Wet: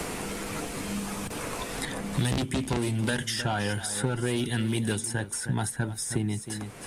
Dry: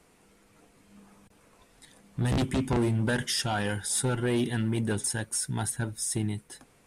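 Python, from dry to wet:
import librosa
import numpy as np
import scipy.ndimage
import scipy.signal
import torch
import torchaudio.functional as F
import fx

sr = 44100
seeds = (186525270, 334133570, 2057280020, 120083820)

p1 = x + fx.echo_single(x, sr, ms=312, db=-17.0, dry=0)
y = fx.band_squash(p1, sr, depth_pct=100)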